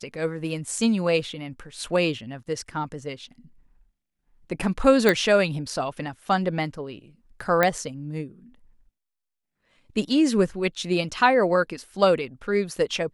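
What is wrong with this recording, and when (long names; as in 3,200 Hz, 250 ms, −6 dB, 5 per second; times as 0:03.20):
0:05.09: click −6 dBFS
0:07.63: click −7 dBFS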